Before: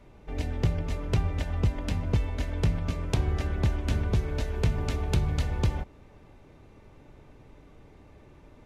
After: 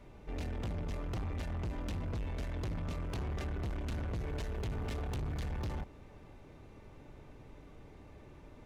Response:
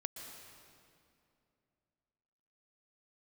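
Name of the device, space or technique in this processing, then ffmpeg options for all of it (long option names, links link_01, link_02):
saturation between pre-emphasis and de-emphasis: -af "highshelf=frequency=5800:gain=10.5,asoftclip=type=tanh:threshold=-33.5dB,highshelf=frequency=5800:gain=-10.5,volume=-1dB"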